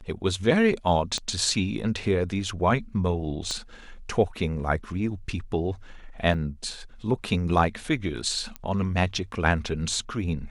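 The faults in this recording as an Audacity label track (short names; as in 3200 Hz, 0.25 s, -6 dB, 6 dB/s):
1.180000	1.180000	pop -17 dBFS
3.510000	3.510000	pop -18 dBFS
6.340000	6.340000	gap 2.2 ms
8.560000	8.560000	pop -18 dBFS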